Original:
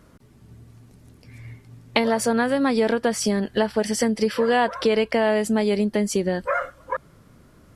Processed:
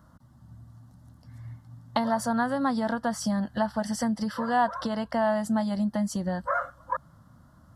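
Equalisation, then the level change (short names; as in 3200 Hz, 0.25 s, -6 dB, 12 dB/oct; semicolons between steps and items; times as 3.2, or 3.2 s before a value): HPF 54 Hz; bell 9600 Hz -8.5 dB 2.1 oct; fixed phaser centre 1000 Hz, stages 4; 0.0 dB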